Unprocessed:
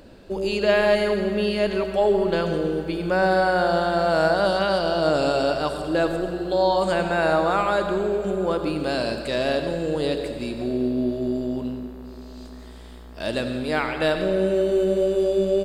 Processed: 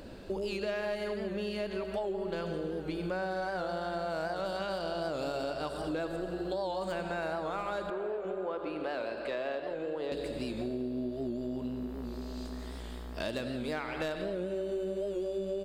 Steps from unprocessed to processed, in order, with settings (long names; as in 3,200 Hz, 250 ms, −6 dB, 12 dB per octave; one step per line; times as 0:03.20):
stylus tracing distortion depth 0.032 ms
0:07.90–0:10.12: three-way crossover with the lows and the highs turned down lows −16 dB, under 330 Hz, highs −18 dB, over 3,000 Hz
downward compressor 6 to 1, threshold −33 dBFS, peak gain reduction 17 dB
wow of a warped record 78 rpm, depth 100 cents